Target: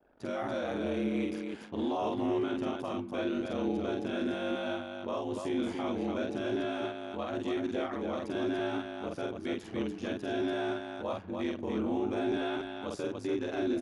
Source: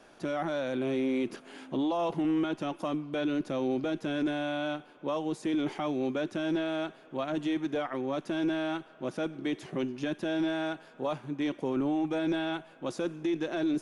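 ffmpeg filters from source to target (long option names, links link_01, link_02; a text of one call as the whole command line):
ffmpeg -i in.wav -af "anlmdn=0.00158,aeval=exprs='val(0)*sin(2*PI*48*n/s)':channel_layout=same,aecho=1:1:46.65|288.6:0.794|0.631,volume=-2dB" out.wav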